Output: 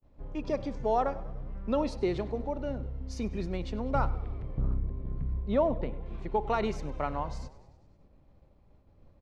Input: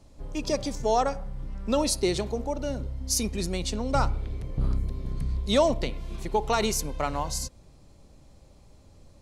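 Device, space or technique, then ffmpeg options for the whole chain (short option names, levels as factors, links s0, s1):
hearing-loss simulation: -filter_complex "[0:a]asettb=1/sr,asplit=3[s0][s1][s2];[s0]atrim=end=4.614[s3];[s1]atrim=start=4.61:end=6.06,asetpts=PTS-STARTPTS,afade=t=in:d=0.004:c=qsin,afade=t=out:st=1.446:d=0.004:c=qsin,lowpass=f=1300:p=1[s4];[s2]atrim=start=6.056[s5];[s3][s4]acrossfade=d=0.004:c1=hsin:c2=qsin[s6];[s6][s5]acrossfade=d=0.004:c1=qsin:c2=hsin,lowpass=2100,agate=range=0.0224:threshold=0.00398:ratio=3:detection=peak,asplit=7[s7][s8][s9][s10][s11][s12][s13];[s8]adelay=98,afreqshift=-36,volume=0.112[s14];[s9]adelay=196,afreqshift=-72,volume=0.0733[s15];[s10]adelay=294,afreqshift=-108,volume=0.0473[s16];[s11]adelay=392,afreqshift=-144,volume=0.0309[s17];[s12]adelay=490,afreqshift=-180,volume=0.02[s18];[s13]adelay=588,afreqshift=-216,volume=0.013[s19];[s7][s14][s15][s16][s17][s18][s19]amix=inputs=7:normalize=0,volume=0.668"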